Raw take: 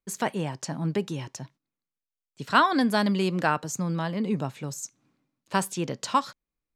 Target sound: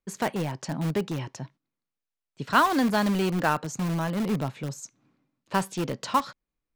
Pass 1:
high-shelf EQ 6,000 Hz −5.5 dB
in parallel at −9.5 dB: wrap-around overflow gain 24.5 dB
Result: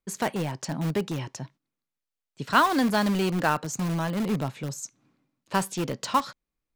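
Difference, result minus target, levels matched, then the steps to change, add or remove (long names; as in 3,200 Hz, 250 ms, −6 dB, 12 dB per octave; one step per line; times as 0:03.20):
8,000 Hz band +3.0 dB
change: high-shelf EQ 6,000 Hz −13 dB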